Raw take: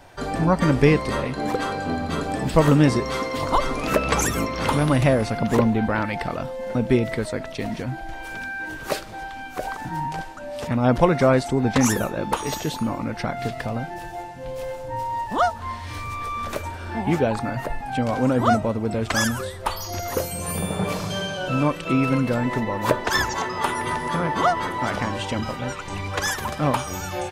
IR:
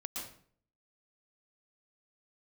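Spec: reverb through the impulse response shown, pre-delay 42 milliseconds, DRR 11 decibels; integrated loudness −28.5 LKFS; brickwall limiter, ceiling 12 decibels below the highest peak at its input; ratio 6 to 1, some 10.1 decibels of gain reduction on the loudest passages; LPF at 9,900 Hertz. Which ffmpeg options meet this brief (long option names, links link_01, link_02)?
-filter_complex "[0:a]lowpass=9900,acompressor=threshold=-22dB:ratio=6,alimiter=limit=-22.5dB:level=0:latency=1,asplit=2[link_01][link_02];[1:a]atrim=start_sample=2205,adelay=42[link_03];[link_02][link_03]afir=irnorm=-1:irlink=0,volume=-11dB[link_04];[link_01][link_04]amix=inputs=2:normalize=0,volume=2.5dB"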